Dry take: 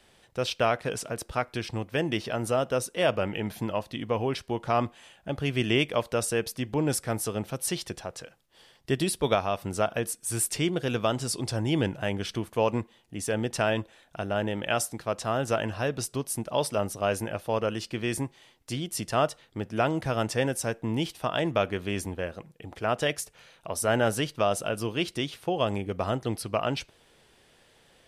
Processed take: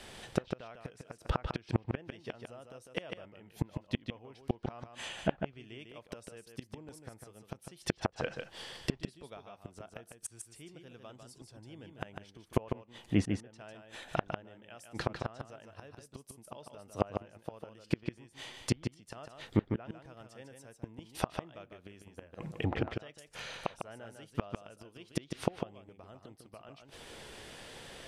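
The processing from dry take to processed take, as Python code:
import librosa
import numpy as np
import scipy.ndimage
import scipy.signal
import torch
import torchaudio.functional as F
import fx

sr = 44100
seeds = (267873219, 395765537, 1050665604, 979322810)

y = fx.gate_flip(x, sr, shuts_db=-24.0, range_db=-35)
y = y + 10.0 ** (-6.0 / 20.0) * np.pad(y, (int(150 * sr / 1000.0), 0))[:len(y)]
y = fx.env_lowpass_down(y, sr, base_hz=2300.0, full_db=-39.0)
y = y * librosa.db_to_amplitude(10.0)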